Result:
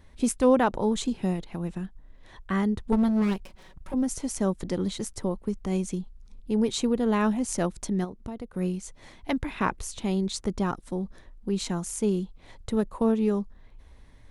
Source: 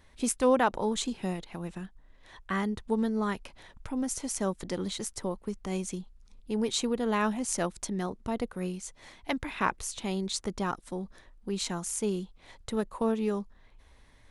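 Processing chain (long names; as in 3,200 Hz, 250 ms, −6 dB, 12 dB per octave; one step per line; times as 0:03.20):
0:02.92–0:03.94: lower of the sound and its delayed copy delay 5.3 ms
low-shelf EQ 490 Hz +8.5 dB
0:08.04–0:08.54: downward compressor 5 to 1, threshold −33 dBFS, peak gain reduction 11.5 dB
level −1 dB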